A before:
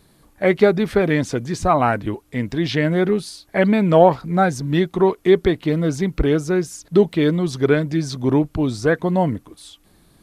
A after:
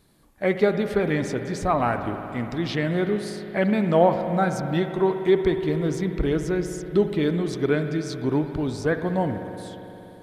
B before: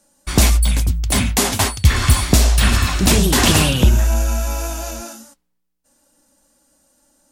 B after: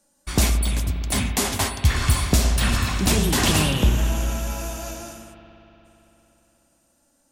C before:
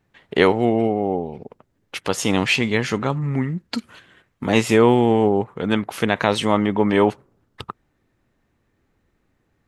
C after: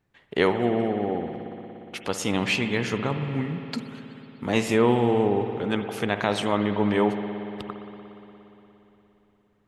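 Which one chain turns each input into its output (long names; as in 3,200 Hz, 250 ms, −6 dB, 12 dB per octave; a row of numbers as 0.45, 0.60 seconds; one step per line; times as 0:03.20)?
spring reverb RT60 3.6 s, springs 58 ms, chirp 70 ms, DRR 7 dB
level −6 dB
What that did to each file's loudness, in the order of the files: −5.0, −6.0, −5.5 LU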